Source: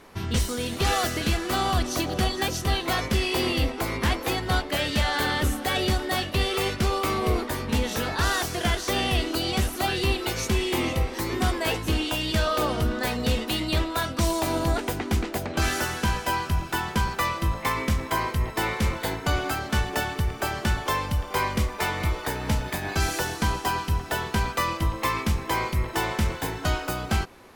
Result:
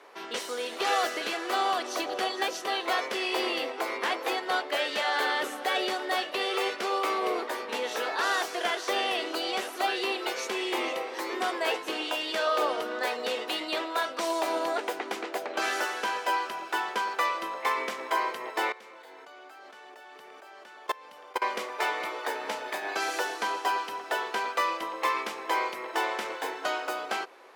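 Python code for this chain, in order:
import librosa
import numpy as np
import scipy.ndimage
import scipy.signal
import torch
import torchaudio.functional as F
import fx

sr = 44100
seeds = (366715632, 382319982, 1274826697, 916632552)

y = scipy.signal.sosfilt(scipy.signal.butter(4, 400.0, 'highpass', fs=sr, output='sos'), x)
y = fx.level_steps(y, sr, step_db=24, at=(18.72, 21.42))
y = fx.lowpass(y, sr, hz=3200.0, slope=6)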